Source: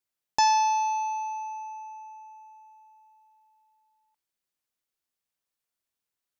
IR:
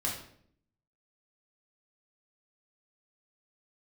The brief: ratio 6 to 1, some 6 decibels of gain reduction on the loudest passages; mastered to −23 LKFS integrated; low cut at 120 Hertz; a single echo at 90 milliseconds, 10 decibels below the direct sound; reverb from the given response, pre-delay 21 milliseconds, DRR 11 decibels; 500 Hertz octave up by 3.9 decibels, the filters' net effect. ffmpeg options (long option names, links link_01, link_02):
-filter_complex "[0:a]highpass=120,equalizer=frequency=500:width_type=o:gain=5,acompressor=threshold=-24dB:ratio=6,aecho=1:1:90:0.316,asplit=2[link_01][link_02];[1:a]atrim=start_sample=2205,adelay=21[link_03];[link_02][link_03]afir=irnorm=-1:irlink=0,volume=-16dB[link_04];[link_01][link_04]amix=inputs=2:normalize=0,volume=5dB"